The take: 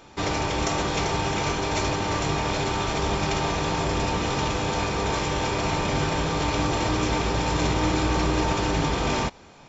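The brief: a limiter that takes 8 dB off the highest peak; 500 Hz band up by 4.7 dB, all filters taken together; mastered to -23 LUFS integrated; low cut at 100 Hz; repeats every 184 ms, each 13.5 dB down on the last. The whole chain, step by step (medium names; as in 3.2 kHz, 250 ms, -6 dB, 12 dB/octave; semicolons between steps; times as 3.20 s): high-pass 100 Hz; peaking EQ 500 Hz +6 dB; peak limiter -16 dBFS; feedback delay 184 ms, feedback 21%, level -13.5 dB; trim +2 dB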